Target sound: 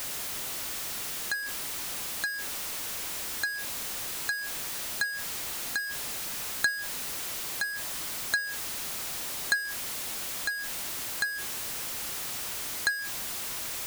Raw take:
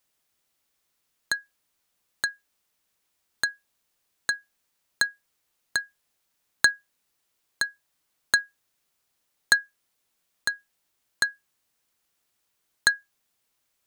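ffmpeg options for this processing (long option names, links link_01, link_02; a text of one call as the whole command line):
ffmpeg -i in.wav -af "aeval=exprs='val(0)+0.5*0.0944*sgn(val(0))':channel_layout=same,volume=-8.5dB" out.wav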